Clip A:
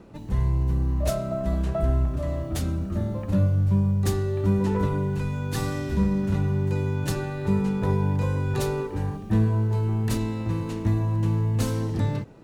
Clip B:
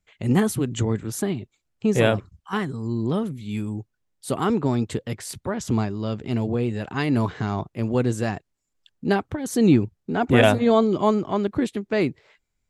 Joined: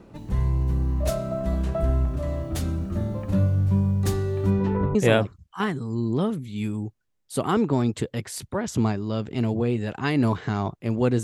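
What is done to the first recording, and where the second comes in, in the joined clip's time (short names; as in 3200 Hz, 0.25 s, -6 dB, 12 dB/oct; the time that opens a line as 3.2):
clip A
4.5–4.95 LPF 6300 Hz -> 1000 Hz
4.95 switch to clip B from 1.88 s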